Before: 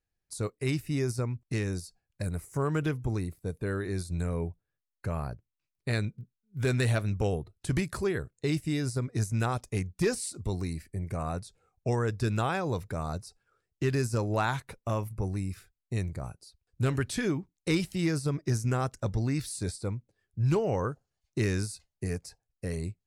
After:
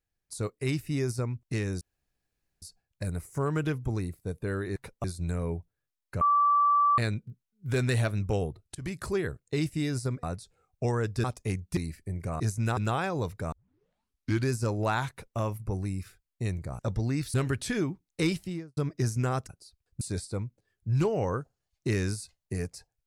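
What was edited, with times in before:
1.81 s: insert room tone 0.81 s
5.12–5.89 s: bleep 1.16 kHz -19.5 dBFS
7.66–7.99 s: fade in, from -18 dB
9.14–9.51 s: swap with 11.27–12.28 s
10.04–10.64 s: delete
13.03 s: tape start 0.98 s
14.61–14.89 s: copy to 3.95 s
16.30–16.82 s: swap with 18.97–19.52 s
17.79–18.25 s: studio fade out

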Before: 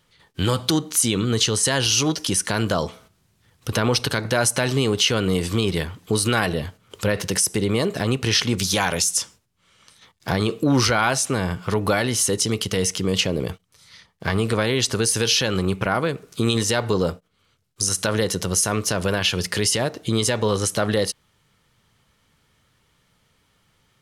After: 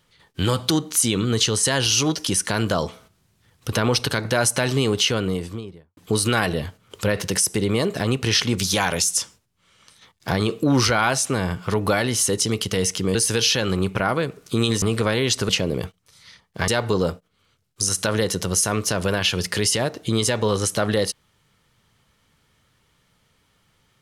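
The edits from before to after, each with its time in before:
4.94–5.97 s: studio fade out
13.15–14.34 s: swap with 15.01–16.68 s

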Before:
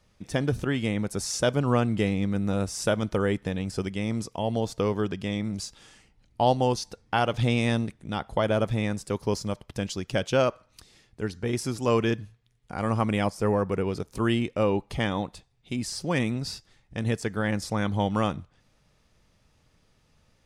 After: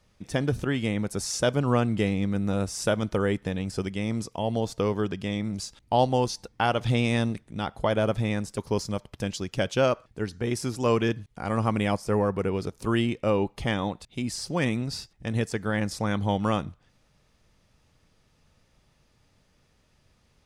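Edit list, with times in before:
shorten pauses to 0.22 s

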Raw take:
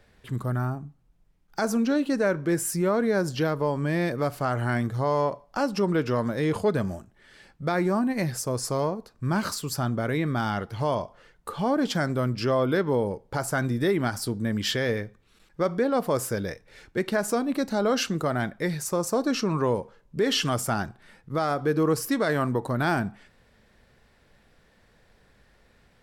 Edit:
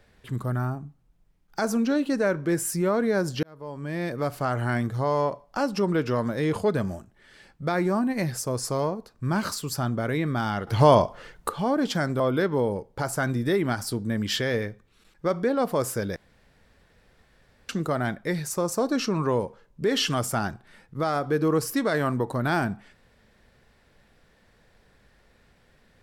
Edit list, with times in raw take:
3.43–4.35 s: fade in
10.67–11.49 s: gain +10 dB
12.20–12.55 s: delete
16.51–18.04 s: room tone

